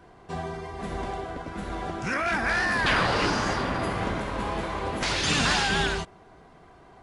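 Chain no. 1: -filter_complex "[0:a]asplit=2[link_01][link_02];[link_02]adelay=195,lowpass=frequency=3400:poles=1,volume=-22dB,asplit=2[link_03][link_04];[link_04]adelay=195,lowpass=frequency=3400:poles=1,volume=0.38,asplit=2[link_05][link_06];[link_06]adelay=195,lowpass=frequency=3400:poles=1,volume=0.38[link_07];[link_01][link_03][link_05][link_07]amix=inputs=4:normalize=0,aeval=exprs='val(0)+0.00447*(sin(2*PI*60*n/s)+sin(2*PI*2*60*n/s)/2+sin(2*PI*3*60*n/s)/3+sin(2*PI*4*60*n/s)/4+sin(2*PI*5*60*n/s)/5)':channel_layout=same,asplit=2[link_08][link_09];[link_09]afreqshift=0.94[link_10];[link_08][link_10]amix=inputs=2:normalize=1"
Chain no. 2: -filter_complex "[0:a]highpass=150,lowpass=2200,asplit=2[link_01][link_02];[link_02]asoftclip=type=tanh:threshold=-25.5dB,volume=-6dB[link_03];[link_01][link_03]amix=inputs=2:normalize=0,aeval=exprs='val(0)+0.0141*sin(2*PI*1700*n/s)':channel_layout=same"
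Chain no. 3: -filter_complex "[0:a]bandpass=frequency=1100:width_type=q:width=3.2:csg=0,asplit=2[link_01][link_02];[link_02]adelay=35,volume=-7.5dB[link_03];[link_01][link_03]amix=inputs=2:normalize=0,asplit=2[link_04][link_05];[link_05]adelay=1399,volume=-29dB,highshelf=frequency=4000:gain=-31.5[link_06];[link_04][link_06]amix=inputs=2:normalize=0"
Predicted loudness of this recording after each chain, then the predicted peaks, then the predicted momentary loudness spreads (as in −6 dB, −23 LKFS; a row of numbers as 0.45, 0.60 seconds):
−30.0, −26.0, −34.5 LKFS; −12.5, −12.0, −18.0 dBFS; 13, 13, 14 LU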